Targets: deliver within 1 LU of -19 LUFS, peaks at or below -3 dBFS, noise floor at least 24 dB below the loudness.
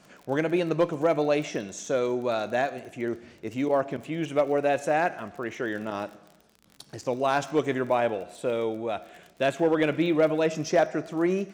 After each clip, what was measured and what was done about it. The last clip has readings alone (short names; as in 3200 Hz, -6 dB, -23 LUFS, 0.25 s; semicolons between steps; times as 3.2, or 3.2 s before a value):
ticks 34/s; loudness -27.0 LUFS; peak -12.5 dBFS; loudness target -19.0 LUFS
-> de-click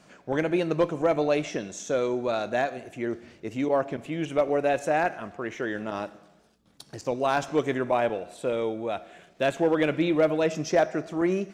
ticks 0/s; loudness -27.0 LUFS; peak -12.5 dBFS; loudness target -19.0 LUFS
-> gain +8 dB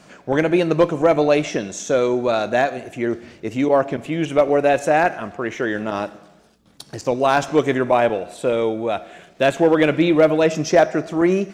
loudness -19.0 LUFS; peak -4.5 dBFS; noise floor -51 dBFS